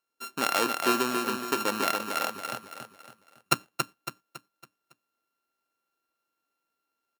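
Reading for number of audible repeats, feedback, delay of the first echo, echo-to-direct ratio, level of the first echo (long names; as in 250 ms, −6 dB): 4, 40%, 278 ms, −4.0 dB, −5.0 dB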